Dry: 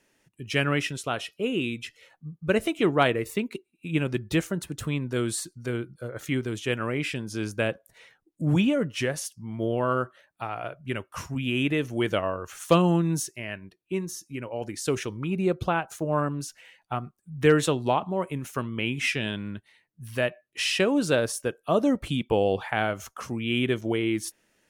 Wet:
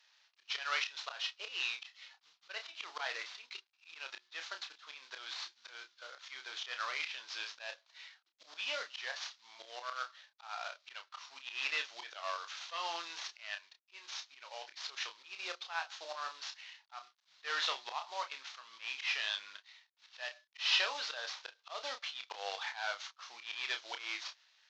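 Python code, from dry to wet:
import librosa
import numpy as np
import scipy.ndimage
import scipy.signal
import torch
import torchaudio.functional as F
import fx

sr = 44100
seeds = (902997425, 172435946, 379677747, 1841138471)

y = fx.cvsd(x, sr, bps=32000)
y = scipy.signal.sosfilt(scipy.signal.butter(4, 850.0, 'highpass', fs=sr, output='sos'), y)
y = fx.peak_eq(y, sr, hz=3900.0, db=8.5, octaves=0.8)
y = fx.auto_swell(y, sr, attack_ms=168.0)
y = fx.doubler(y, sr, ms=30.0, db=-7)
y = F.gain(torch.from_numpy(y), -4.0).numpy()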